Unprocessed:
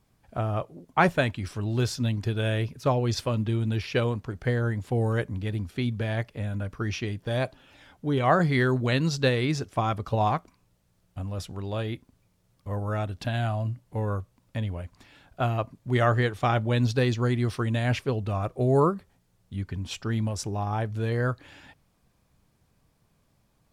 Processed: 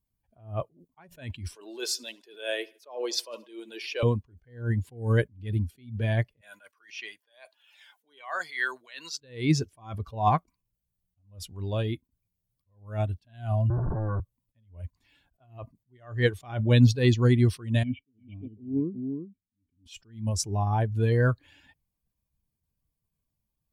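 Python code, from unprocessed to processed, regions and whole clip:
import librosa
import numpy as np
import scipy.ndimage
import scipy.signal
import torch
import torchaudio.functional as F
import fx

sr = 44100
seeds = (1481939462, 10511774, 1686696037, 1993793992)

y = fx.chain(x, sr, fx.highpass(hz=390.0, slope=24),
    fx.echo_feedback(ms=76, feedback_pct=52, wet_db=-17.5), at=(1.55, 4.03))
y = fx.chain(y, sr, fx.highpass(hz=880.0, slope=12),
    fx.band_squash(depth_pct=40), at=(6.41, 9.22))
y = fx.chain(y, sr, fx.clip_1bit(),
    fx.steep_lowpass(hz=1600.0, slope=72),
    fx.band_squash(depth_pct=70), at=(13.7, 14.2))
y = fx.chain(y, sr, fx.formant_cascade(vowel='i'),
    fx.echo_single(ms=349, db=-5.0), at=(17.83, 19.86))
y = fx.bin_expand(y, sr, power=1.5)
y = fx.notch(y, sr, hz=1300.0, q=10.0)
y = fx.attack_slew(y, sr, db_per_s=150.0)
y = F.gain(torch.from_numpy(y), 7.5).numpy()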